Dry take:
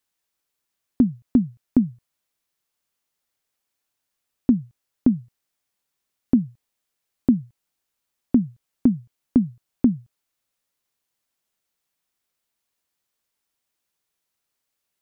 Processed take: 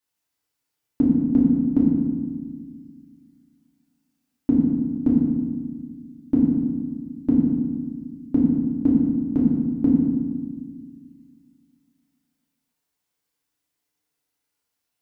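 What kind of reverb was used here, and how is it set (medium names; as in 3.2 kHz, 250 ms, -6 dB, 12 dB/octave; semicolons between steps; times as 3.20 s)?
FDN reverb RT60 1.5 s, low-frequency decay 1.6×, high-frequency decay 0.7×, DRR -6 dB; trim -6.5 dB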